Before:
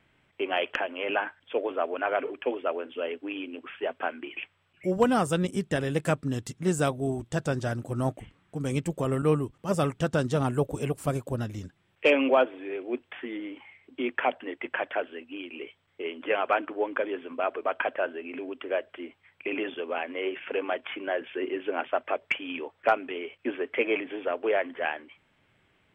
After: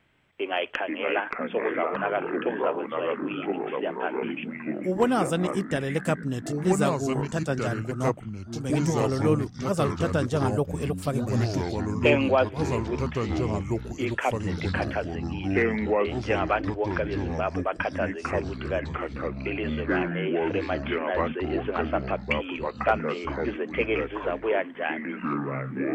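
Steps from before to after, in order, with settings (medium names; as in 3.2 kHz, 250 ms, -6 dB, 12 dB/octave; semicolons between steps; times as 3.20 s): ever faster or slower copies 379 ms, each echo -4 st, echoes 3; 7.43–8.70 s: three bands expanded up and down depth 100%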